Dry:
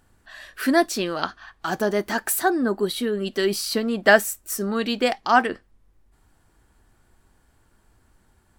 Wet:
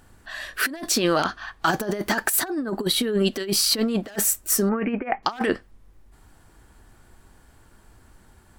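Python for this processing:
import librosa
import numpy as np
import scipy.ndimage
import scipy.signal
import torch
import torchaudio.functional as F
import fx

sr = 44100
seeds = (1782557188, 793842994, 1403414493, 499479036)

y = 10.0 ** (-9.5 / 20.0) * (np.abs((x / 10.0 ** (-9.5 / 20.0) + 3.0) % 4.0 - 2.0) - 1.0)
y = fx.over_compress(y, sr, threshold_db=-26.0, ratio=-0.5)
y = fx.ellip_lowpass(y, sr, hz=2400.0, order=4, stop_db=40, at=(4.69, 5.23))
y = y * 10.0 ** (3.5 / 20.0)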